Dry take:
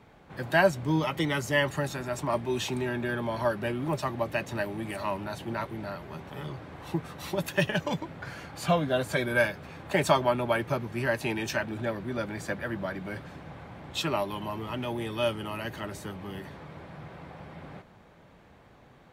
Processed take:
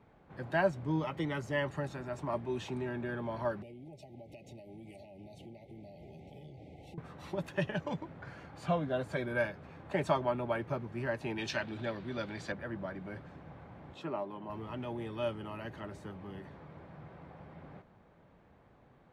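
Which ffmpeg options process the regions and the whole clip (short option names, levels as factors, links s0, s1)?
-filter_complex "[0:a]asettb=1/sr,asplit=3[s0][s1][s2];[s0]atrim=end=3.624[s3];[s1]atrim=start=3.62:end=6.98,asetpts=PTS-STARTPTS,afade=t=in:d=0.004:c=qsin,afade=t=out:st=3.356:d=0.004:c=qsin,acompressor=threshold=0.0112:ratio=12:attack=3.2:release=140:knee=1:detection=peak,asuperstop=centerf=1300:order=20:qfactor=1.1,highshelf=f=5200:g=6.5[s4];[s2]atrim=start=6.976[s5];[s3][s4]acrossfade=d=0.004:c1=hsin:c2=qsin[s6];[s6][s5]acrossfade=d=0.004:c1=qsin:c2=hsin,asettb=1/sr,asplit=3[s7][s8][s9];[s7]atrim=end=11.384[s10];[s8]atrim=start=11.38:end=12.52,asetpts=PTS-STARTPTS,afade=t=in:d=0.004:c=qsin,afade=t=out:st=1.136:d=0.004:c=qsin,highpass=56,equalizer=f=4000:w=0.82:g=13.5[s11];[s9]atrim=start=12.516[s12];[s10][s11]acrossfade=d=0.004:c1=hsin:c2=qsin[s13];[s13][s12]acrossfade=d=0.004:c1=qsin:c2=hsin,asettb=1/sr,asplit=3[s14][s15][s16];[s14]atrim=end=13.944[s17];[s15]atrim=start=13.94:end=14.5,asetpts=PTS-STARTPTS,afade=t=in:d=0.004:c=qsin,afade=t=out:st=0.556:d=0.004:c=qsin,highpass=190,highshelf=f=2100:g=-11.5[s18];[s16]atrim=start=14.496[s19];[s17][s18]acrossfade=d=0.004:c1=hsin:c2=qsin[s20];[s20][s19]acrossfade=d=0.004:c1=qsin:c2=hsin,lowpass=10000,highshelf=f=2600:g=-11.5,volume=0.501"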